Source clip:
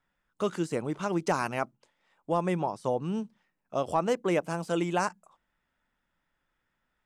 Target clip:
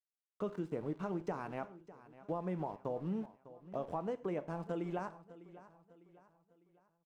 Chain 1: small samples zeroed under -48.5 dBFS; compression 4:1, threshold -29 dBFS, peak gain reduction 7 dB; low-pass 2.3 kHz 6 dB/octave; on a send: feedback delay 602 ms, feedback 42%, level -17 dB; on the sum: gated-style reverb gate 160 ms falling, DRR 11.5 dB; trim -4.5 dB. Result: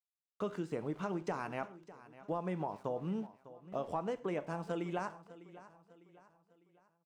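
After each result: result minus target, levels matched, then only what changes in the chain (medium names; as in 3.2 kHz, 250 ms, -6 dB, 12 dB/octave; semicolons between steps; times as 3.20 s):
small samples zeroed: distortion -9 dB; 2 kHz band +4.0 dB
change: small samples zeroed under -40.5 dBFS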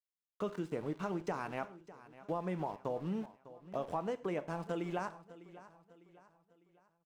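2 kHz band +4.0 dB
change: low-pass 840 Hz 6 dB/octave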